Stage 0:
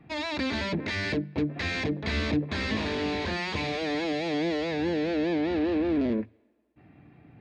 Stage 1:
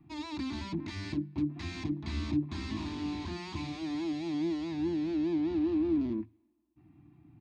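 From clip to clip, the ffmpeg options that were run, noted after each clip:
ffmpeg -i in.wav -af "firequalizer=gain_entry='entry(150,0);entry(210,-5);entry(330,4);entry(470,-27);entry(710,-10);entry(1000,-2);entry(1600,-14);entry(2500,-9);entry(5900,-3);entry(9900,0)':delay=0.05:min_phase=1,volume=-4dB" out.wav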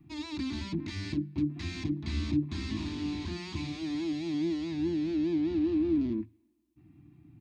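ffmpeg -i in.wav -af "equalizer=frequency=840:width=0.88:gain=-8,volume=3dB" out.wav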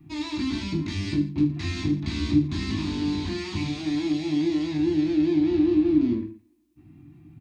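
ffmpeg -i in.wav -af "aecho=1:1:20|45|76.25|115.3|164.1:0.631|0.398|0.251|0.158|0.1,volume=5dB" out.wav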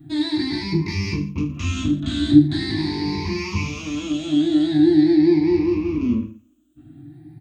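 ffmpeg -i in.wav -af "afftfilt=real='re*pow(10,17/40*sin(2*PI*(0.82*log(max(b,1)*sr/1024/100)/log(2)-(0.43)*(pts-256)/sr)))':imag='im*pow(10,17/40*sin(2*PI*(0.82*log(max(b,1)*sr/1024/100)/log(2)-(0.43)*(pts-256)/sr)))':win_size=1024:overlap=0.75,volume=2dB" out.wav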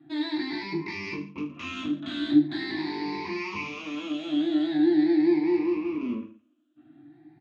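ffmpeg -i in.wav -af "highpass=390,lowpass=2900,volume=-1.5dB" out.wav

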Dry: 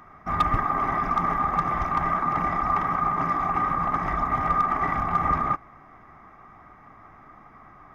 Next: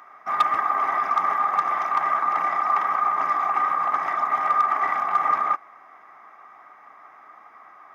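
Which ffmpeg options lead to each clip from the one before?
ffmpeg -i in.wav -af "highpass=640,volume=3dB" out.wav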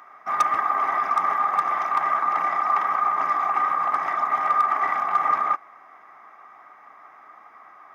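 ffmpeg -i in.wav -af "aeval=exprs='0.299*(abs(mod(val(0)/0.299+3,4)-2)-1)':channel_layout=same" out.wav

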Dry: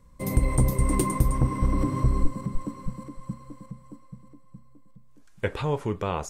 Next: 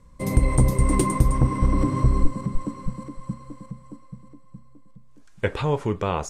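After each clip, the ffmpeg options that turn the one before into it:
ffmpeg -i in.wav -af "lowpass=10000,volume=3.5dB" out.wav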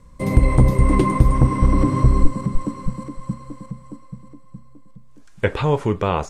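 ffmpeg -i in.wav -filter_complex "[0:a]acrossover=split=4200[link_01][link_02];[link_02]acompressor=threshold=-48dB:ratio=4:attack=1:release=60[link_03];[link_01][link_03]amix=inputs=2:normalize=0,volume=4.5dB" out.wav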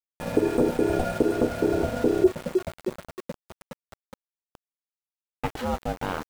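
ffmpeg -i in.wav -af "aeval=exprs='val(0)*sin(2*PI*370*n/s)':channel_layout=same,aeval=exprs='val(0)*gte(abs(val(0)),0.0422)':channel_layout=same,volume=-6.5dB" out.wav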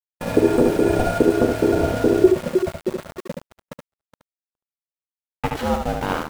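ffmpeg -i in.wav -af "agate=range=-44dB:threshold=-42dB:ratio=16:detection=peak,aecho=1:1:73:0.596,volume=5dB" out.wav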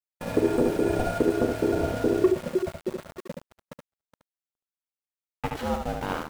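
ffmpeg -i in.wav -af "asoftclip=type=hard:threshold=-5.5dB,volume=-6.5dB" out.wav

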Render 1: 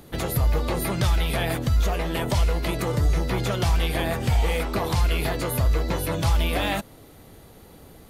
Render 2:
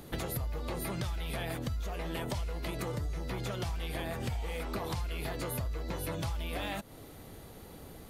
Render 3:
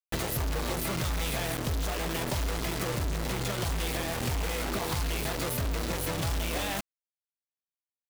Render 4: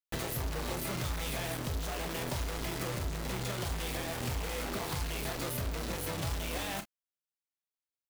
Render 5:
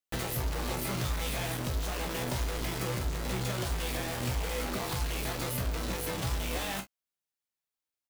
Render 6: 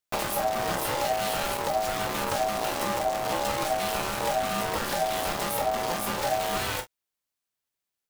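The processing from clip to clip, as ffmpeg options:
ffmpeg -i in.wav -af "acompressor=threshold=-31dB:ratio=10,volume=-1.5dB" out.wav
ffmpeg -i in.wav -af "acrusher=bits=5:mix=0:aa=0.000001,volume=3.5dB" out.wav
ffmpeg -i in.wav -af "aecho=1:1:32|46:0.335|0.178,volume=-5dB" out.wav
ffmpeg -i in.wav -filter_complex "[0:a]asplit=2[link_01][link_02];[link_02]adelay=16,volume=-8dB[link_03];[link_01][link_03]amix=inputs=2:normalize=0,volume=1.5dB" out.wav
ffmpeg -i in.wav -af "aeval=exprs='val(0)*sin(2*PI*700*n/s)':channel_layout=same,volume=7.5dB" out.wav

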